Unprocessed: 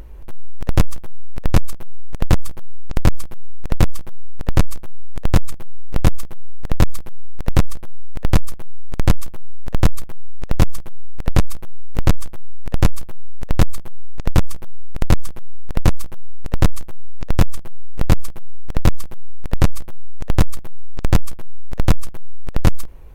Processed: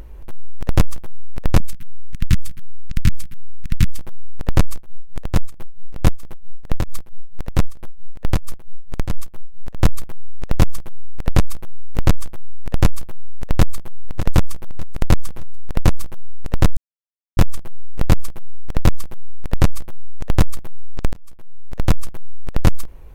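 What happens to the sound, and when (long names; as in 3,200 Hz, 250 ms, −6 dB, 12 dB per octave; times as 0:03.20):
0:01.60–0:03.99: Chebyshev band-stop filter 200–1,900 Hz
0:04.74–0:09.89: amplitude tremolo 4.5 Hz, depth 79%
0:13.45–0:13.85: delay throw 600 ms, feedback 45%, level −11.5 dB
0:16.77–0:17.37: silence
0:21.13–0:22.02: fade in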